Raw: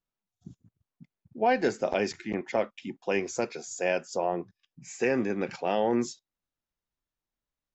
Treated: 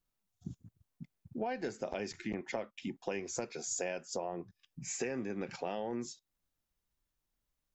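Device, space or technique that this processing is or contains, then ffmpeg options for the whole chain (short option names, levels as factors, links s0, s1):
ASMR close-microphone chain: -af "lowshelf=f=130:g=7.5,acompressor=threshold=0.0158:ratio=6,highshelf=f=6200:g=5.5,volume=1.12"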